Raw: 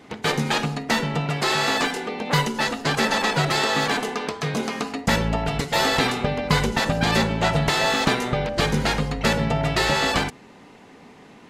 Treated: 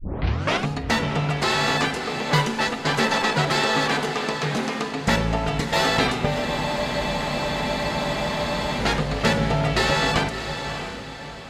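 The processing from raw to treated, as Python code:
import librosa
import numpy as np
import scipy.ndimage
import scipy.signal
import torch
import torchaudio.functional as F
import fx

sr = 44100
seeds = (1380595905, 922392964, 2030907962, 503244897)

y = fx.tape_start_head(x, sr, length_s=0.68)
y = fx.high_shelf(y, sr, hz=11000.0, db=-9.0)
y = fx.echo_diffused(y, sr, ms=633, feedback_pct=43, wet_db=-8.5)
y = fx.spec_freeze(y, sr, seeds[0], at_s=6.47, hold_s=2.33)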